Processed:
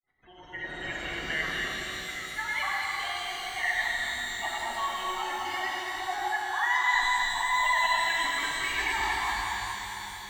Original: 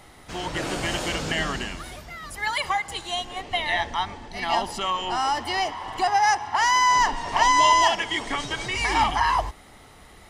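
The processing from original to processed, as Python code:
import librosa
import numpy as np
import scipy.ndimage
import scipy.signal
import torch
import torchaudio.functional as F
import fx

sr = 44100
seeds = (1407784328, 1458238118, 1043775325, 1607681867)

y = fx.fade_in_head(x, sr, length_s=0.92)
y = fx.spec_gate(y, sr, threshold_db=-15, keep='strong')
y = fx.peak_eq(y, sr, hz=1900.0, db=12.0, octaves=0.91)
y = fx.comb_fb(y, sr, f0_hz=370.0, decay_s=0.72, harmonics='all', damping=0.0, mix_pct=70)
y = fx.granulator(y, sr, seeds[0], grain_ms=100.0, per_s=20.0, spray_ms=100.0, spread_st=0)
y = fx.doubler(y, sr, ms=46.0, db=-12)
y = y + 10.0 ** (-6.5 / 20.0) * np.pad(y, (int(227 * sr / 1000.0), 0))[:len(y)]
y = fx.rev_shimmer(y, sr, seeds[1], rt60_s=4.0, semitones=12, shimmer_db=-8, drr_db=-1.5)
y = y * 10.0 ** (-3.5 / 20.0)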